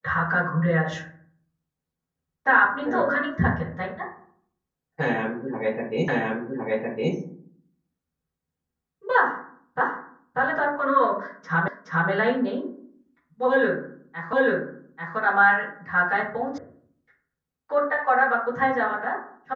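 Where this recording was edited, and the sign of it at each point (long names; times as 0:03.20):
0:06.08: the same again, the last 1.06 s
0:09.81: the same again, the last 0.59 s
0:11.68: the same again, the last 0.42 s
0:14.33: the same again, the last 0.84 s
0:16.58: cut off before it has died away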